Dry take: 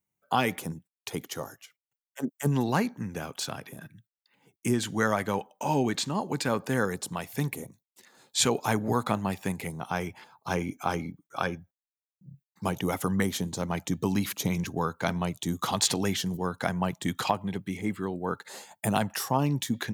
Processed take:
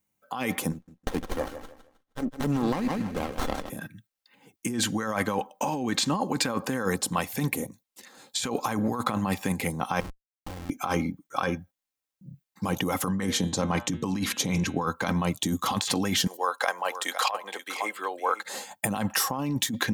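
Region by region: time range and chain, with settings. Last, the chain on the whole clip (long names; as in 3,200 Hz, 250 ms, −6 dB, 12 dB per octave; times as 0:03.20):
0:00.72–0:03.70: low-shelf EQ 440 Hz −4.5 dB + repeating echo 157 ms, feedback 29%, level −11 dB + windowed peak hold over 17 samples
0:10.00–0:10.70: downward compressor 12 to 1, threshold −35 dBFS + parametric band 2,900 Hz −14 dB 1.3 octaves + comparator with hysteresis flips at −40 dBFS
0:13.08–0:14.87: low-pass filter 9,000 Hz + hum removal 118.5 Hz, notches 34
0:16.27–0:18.43: high-pass filter 500 Hz 24 dB per octave + single-tap delay 510 ms −13.5 dB
whole clip: comb filter 3.8 ms, depth 38%; dynamic equaliser 1,100 Hz, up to +5 dB, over −44 dBFS, Q 3.6; compressor whose output falls as the input rises −30 dBFS, ratio −1; level +3.5 dB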